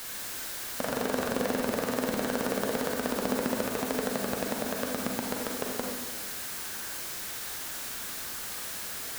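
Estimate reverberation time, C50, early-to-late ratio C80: 1.3 s, 1.5 dB, 4.0 dB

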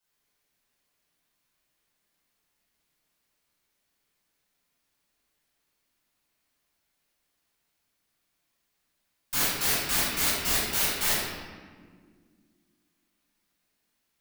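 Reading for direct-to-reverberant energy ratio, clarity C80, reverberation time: -11.5 dB, 1.5 dB, 1.8 s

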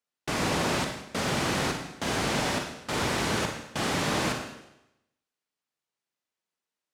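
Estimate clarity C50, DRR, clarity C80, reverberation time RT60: 4.5 dB, 3.0 dB, 7.5 dB, 0.90 s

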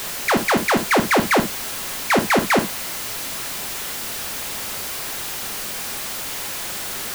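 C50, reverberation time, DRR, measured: 12.0 dB, not exponential, 7.0 dB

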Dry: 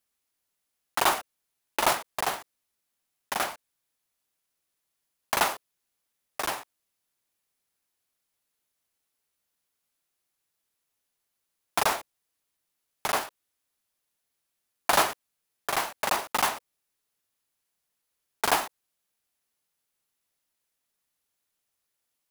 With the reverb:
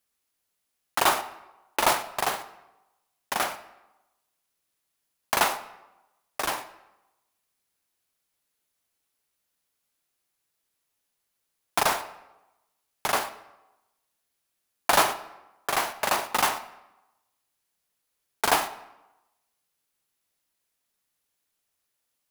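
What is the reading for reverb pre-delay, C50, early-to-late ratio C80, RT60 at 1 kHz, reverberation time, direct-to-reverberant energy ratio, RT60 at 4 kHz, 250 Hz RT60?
13 ms, 13.5 dB, 15.5 dB, 1.0 s, 1.0 s, 11.0 dB, 0.70 s, 0.95 s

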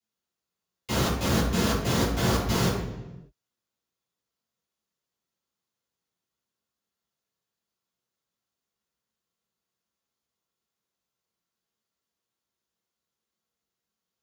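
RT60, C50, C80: 1.1 s, 2.5 dB, 5.5 dB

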